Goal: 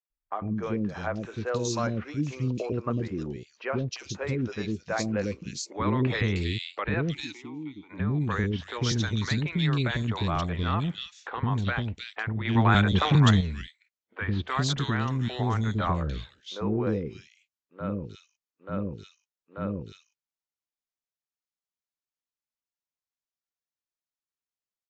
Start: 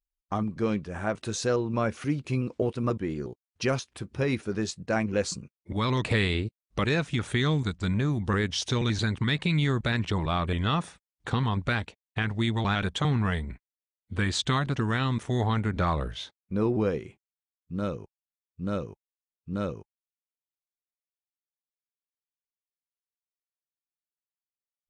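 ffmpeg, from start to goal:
-filter_complex "[0:a]asettb=1/sr,asplit=3[s0][s1][s2];[s0]atrim=end=5.234[s3];[s1]atrim=start=5.23:end=5.97,asetpts=PTS-STARTPTS,afade=t=in:d=0.004:c=qsin,afade=t=out:st=0.736:d=0.004:c=qsin,equalizer=f=340:w=0.99:g=7.5[s4];[s2]atrim=start=5.966[s5];[s3][s4]acrossfade=d=0.004:c1=hsin:c2=qsin[s6];[s6][s5]acrossfade=d=0.004:c1=qsin:c2=hsin,asplit=3[s7][s8][s9];[s7]afade=t=out:st=7.1:d=0.02[s10];[s8]asplit=3[s11][s12][s13];[s11]bandpass=f=300:t=q:w=8,volume=1[s14];[s12]bandpass=f=870:t=q:w=8,volume=0.501[s15];[s13]bandpass=f=2240:t=q:w=8,volume=0.355[s16];[s14][s15][s16]amix=inputs=3:normalize=0,afade=t=in:st=7.1:d=0.02,afade=t=out:st=7.89:d=0.02[s17];[s9]afade=t=in:st=7.89:d=0.02[s18];[s10][s17][s18]amix=inputs=3:normalize=0,asettb=1/sr,asplit=3[s19][s20][s21];[s19]atrim=end=12.454[s22];[s20]atrim=start=12.45:end=13.31,asetpts=PTS-STARTPTS,afade=t=in:d=0.004:c=qsin,afade=t=out:st=0.856:d=0.004:c=qsin,acontrast=85[s23];[s21]atrim=start=13.306[s24];[s22][s23]acrossfade=d=0.004:c1=hsin:c2=qsin[s25];[s25][s24]acrossfade=d=0.004:c1=qsin:c2=hsin,acrossover=split=440|2600[s26][s27][s28];[s26]adelay=100[s29];[s28]adelay=310[s30];[s29][s27][s30]amix=inputs=3:normalize=0" -ar 16000 -c:a aac -b:a 64k

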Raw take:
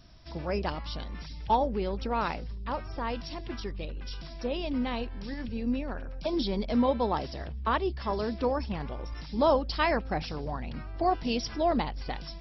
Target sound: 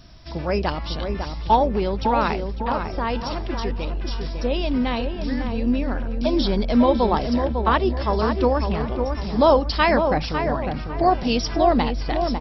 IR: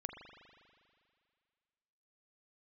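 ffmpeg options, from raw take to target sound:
-filter_complex "[0:a]asplit=2[s0][s1];[s1]adelay=551,lowpass=f=1500:p=1,volume=0.531,asplit=2[s2][s3];[s3]adelay=551,lowpass=f=1500:p=1,volume=0.4,asplit=2[s4][s5];[s5]adelay=551,lowpass=f=1500:p=1,volume=0.4,asplit=2[s6][s7];[s7]adelay=551,lowpass=f=1500:p=1,volume=0.4,asplit=2[s8][s9];[s9]adelay=551,lowpass=f=1500:p=1,volume=0.4[s10];[s0][s2][s4][s6][s8][s10]amix=inputs=6:normalize=0,volume=2.51"

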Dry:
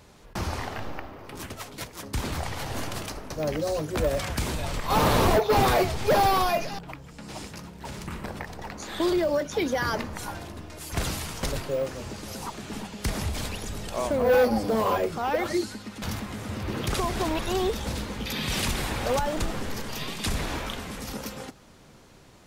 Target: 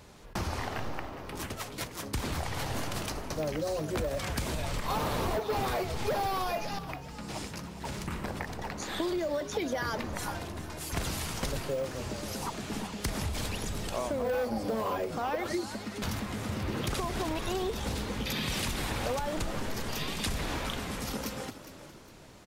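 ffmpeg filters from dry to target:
-filter_complex "[0:a]acompressor=threshold=0.0355:ratio=6,asplit=4[s0][s1][s2][s3];[s1]adelay=409,afreqshift=58,volume=0.211[s4];[s2]adelay=818,afreqshift=116,volume=0.07[s5];[s3]adelay=1227,afreqshift=174,volume=0.0229[s6];[s0][s4][s5][s6]amix=inputs=4:normalize=0"

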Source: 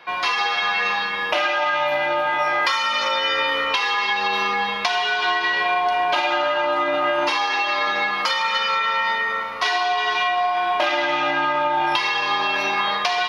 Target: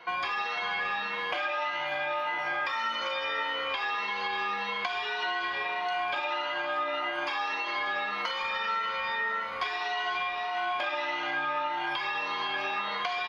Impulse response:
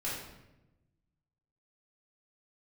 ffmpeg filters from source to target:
-filter_complex "[0:a]afftfilt=real='re*pow(10,11/40*sin(2*PI*(1.9*log(max(b,1)*sr/1024/100)/log(2)-(1.7)*(pts-256)/sr)))':imag='im*pow(10,11/40*sin(2*PI*(1.9*log(max(b,1)*sr/1024/100)/log(2)-(1.7)*(pts-256)/sr)))':win_size=1024:overlap=0.75,acrossover=split=3400[s0][s1];[s1]acompressor=threshold=0.0224:ratio=4:attack=1:release=60[s2];[s0][s2]amix=inputs=2:normalize=0,highshelf=f=6100:g=-8,acrossover=split=440|1300[s3][s4][s5];[s3]acompressor=threshold=0.00631:ratio=4[s6];[s4]acompressor=threshold=0.0251:ratio=4[s7];[s5]acompressor=threshold=0.0398:ratio=4[s8];[s6][s7][s8]amix=inputs=3:normalize=0,asplit=2[s9][s10];[s10]asplit=6[s11][s12][s13][s14][s15][s16];[s11]adelay=195,afreqshift=130,volume=0.141[s17];[s12]adelay=390,afreqshift=260,volume=0.0871[s18];[s13]adelay=585,afreqshift=390,volume=0.0543[s19];[s14]adelay=780,afreqshift=520,volume=0.0335[s20];[s15]adelay=975,afreqshift=650,volume=0.0209[s21];[s16]adelay=1170,afreqshift=780,volume=0.0129[s22];[s17][s18][s19][s20][s21][s22]amix=inputs=6:normalize=0[s23];[s9][s23]amix=inputs=2:normalize=0,volume=0.596"

